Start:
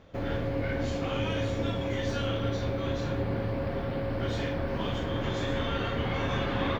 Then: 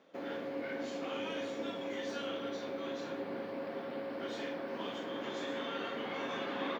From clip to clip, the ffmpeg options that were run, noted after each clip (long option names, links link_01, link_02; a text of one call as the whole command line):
ffmpeg -i in.wav -af "highpass=frequency=230:width=0.5412,highpass=frequency=230:width=1.3066,volume=-6.5dB" out.wav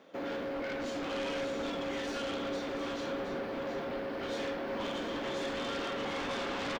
ffmpeg -i in.wav -af "aeval=exprs='0.0531*sin(PI/2*3.16*val(0)/0.0531)':channel_layout=same,aecho=1:1:718:0.376,volume=-7.5dB" out.wav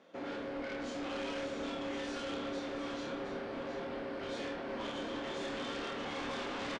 ffmpeg -i in.wav -filter_complex "[0:a]aresample=22050,aresample=44100,asplit=2[link_01][link_02];[link_02]adelay=28,volume=-5dB[link_03];[link_01][link_03]amix=inputs=2:normalize=0,volume=-4.5dB" out.wav